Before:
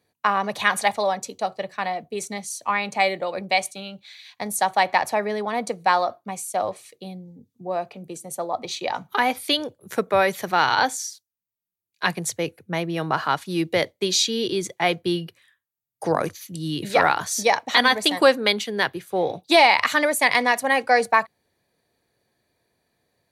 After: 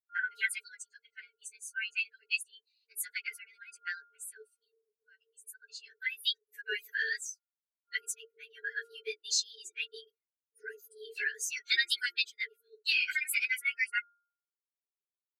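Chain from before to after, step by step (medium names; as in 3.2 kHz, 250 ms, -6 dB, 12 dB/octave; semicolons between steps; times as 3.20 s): expander on every frequency bin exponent 2; frequency shift +330 Hz; plain phase-vocoder stretch 0.66×; FFT band-reject 460–1400 Hz; in parallel at -2 dB: compression, threshold -41 dBFS, peak gain reduction 17.5 dB; on the sum: de-hum 352.6 Hz, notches 4; small resonant body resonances 200/410/3100 Hz, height 7 dB, ringing for 45 ms; dynamic bell 370 Hz, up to +4 dB, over -55 dBFS, Q 1.3; trim -2.5 dB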